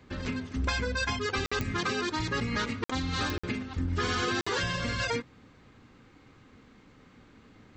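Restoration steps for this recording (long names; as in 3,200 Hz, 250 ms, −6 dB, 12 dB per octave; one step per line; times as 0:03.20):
click removal
repair the gap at 0:01.46/0:02.84/0:03.38/0:04.41, 55 ms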